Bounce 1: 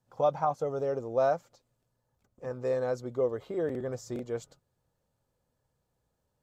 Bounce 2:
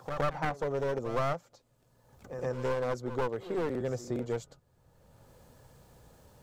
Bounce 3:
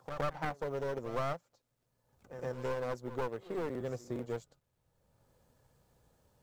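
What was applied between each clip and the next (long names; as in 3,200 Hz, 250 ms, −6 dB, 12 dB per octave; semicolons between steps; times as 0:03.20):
wavefolder on the positive side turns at −29.5 dBFS; backwards echo 117 ms −16 dB; multiband upward and downward compressor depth 70%
mu-law and A-law mismatch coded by A; level −3.5 dB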